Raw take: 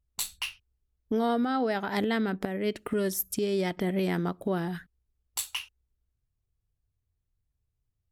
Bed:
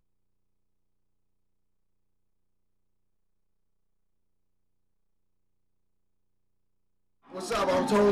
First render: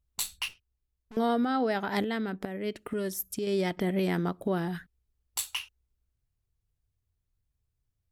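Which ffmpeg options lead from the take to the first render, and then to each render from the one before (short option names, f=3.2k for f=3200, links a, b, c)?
-filter_complex "[0:a]asettb=1/sr,asplit=3[a][b][c];[a]atrim=end=0.484[d];[b]atrim=start=0.48:end=1.17,asetpts=PTS-STARTPTS,afade=t=in:d=0.004:c=qsin,afade=t=out:st=0.686:d=0.004:c=qsin,aeval=exprs='(tanh(200*val(0)+0.75)-tanh(0.75))/200':c=same[e];[c]atrim=start=1.166[f];[d][e]acrossfade=d=0.004:c1=hsin:c2=qsin[g];[g][f]acrossfade=d=0.004:c1=qsin:c2=hsin,asplit=3[h][i][j];[h]atrim=end=2.032[k];[i]atrim=start=2.028:end=3.472,asetpts=PTS-STARTPTS,volume=-4dB[l];[j]atrim=start=3.468[m];[k][l]acrossfade=d=0.004:c1=hsin:c2=hsin[n];[n][m]acrossfade=d=0.004:c1=hsin:c2=hsin"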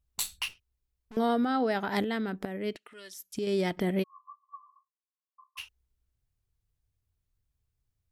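-filter_complex "[0:a]asettb=1/sr,asplit=3[a][b][c];[a]atrim=end=2.764[d];[b]atrim=start=2.76:end=3.35,asetpts=PTS-STARTPTS,afade=t=in:d=0.004:c=qsin,afade=t=out:st=0.586:d=0.004:c=qsin,bandpass=f=3.5k:t=q:w=0.99[e];[c]atrim=start=3.346[f];[d][e]acrossfade=d=0.004:c1=hsin:c2=qsin[g];[g][f]acrossfade=d=0.004:c1=qsin:c2=hsin,asplit=3[h][i][j];[h]afade=t=out:st=4.02:d=0.02[k];[i]asuperpass=centerf=1100:order=20:qfactor=7.8,afade=t=in:st=4.02:d=0.02,afade=t=out:st=5.57:d=0.02[l];[j]afade=t=in:st=5.57:d=0.02[m];[k][l][m]amix=inputs=3:normalize=0"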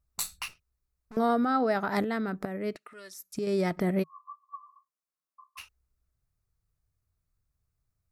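-af "equalizer=f=160:t=o:w=0.33:g=5,equalizer=f=630:t=o:w=0.33:g=4,equalizer=f=1.25k:t=o:w=0.33:g=7,equalizer=f=3.15k:t=o:w=0.33:g=-11"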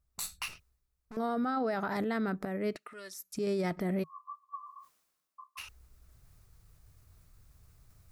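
-af "areverse,acompressor=mode=upward:threshold=-42dB:ratio=2.5,areverse,alimiter=level_in=1.5dB:limit=-24dB:level=0:latency=1:release=20,volume=-1.5dB"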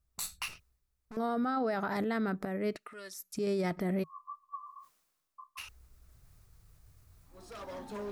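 -filter_complex "[1:a]volume=-18dB[a];[0:a][a]amix=inputs=2:normalize=0"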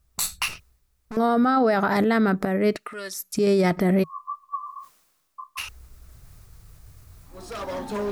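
-af "volume=12dB"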